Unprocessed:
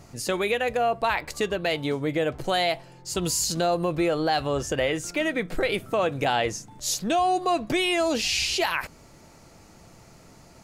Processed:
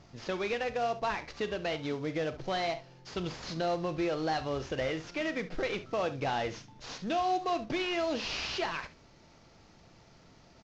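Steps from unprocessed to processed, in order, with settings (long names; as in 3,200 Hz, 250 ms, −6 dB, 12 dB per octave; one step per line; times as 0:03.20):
variable-slope delta modulation 32 kbit/s
on a send: ambience of single reflections 38 ms −14.5 dB, 69 ms −15 dB
on the sum: level −7.5 dB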